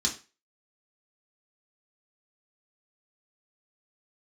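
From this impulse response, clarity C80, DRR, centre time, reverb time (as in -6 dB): 16.5 dB, -2.5 dB, 15 ms, 0.30 s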